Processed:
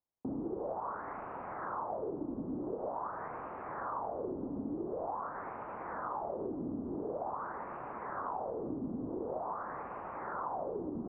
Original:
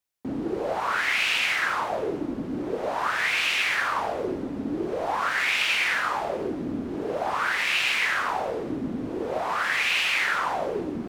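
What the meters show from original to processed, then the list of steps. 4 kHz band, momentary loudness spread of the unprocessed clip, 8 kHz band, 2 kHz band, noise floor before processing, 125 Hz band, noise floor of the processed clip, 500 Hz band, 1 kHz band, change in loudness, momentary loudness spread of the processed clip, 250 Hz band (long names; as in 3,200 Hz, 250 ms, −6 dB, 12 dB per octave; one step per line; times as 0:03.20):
below −40 dB, 9 LU, below −40 dB, −27.5 dB, −33 dBFS, −8.0 dB, −44 dBFS, −9.0 dB, −10.0 dB, −14.5 dB, 4 LU, −8.0 dB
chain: Butterworth low-pass 1,100 Hz 36 dB per octave
downward compressor 4 to 1, threshold −34 dBFS, peak gain reduction 9.5 dB
level −2 dB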